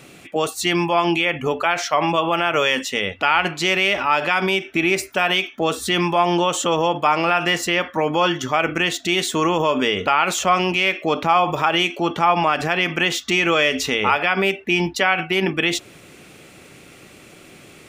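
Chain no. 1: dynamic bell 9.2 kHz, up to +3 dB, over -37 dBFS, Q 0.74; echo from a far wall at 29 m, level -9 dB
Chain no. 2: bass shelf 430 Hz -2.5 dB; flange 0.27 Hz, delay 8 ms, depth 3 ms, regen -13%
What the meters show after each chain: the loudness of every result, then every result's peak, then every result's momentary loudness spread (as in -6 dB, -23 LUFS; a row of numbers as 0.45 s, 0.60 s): -18.5 LUFS, -23.0 LUFS; -2.5 dBFS, -7.0 dBFS; 3 LU, 4 LU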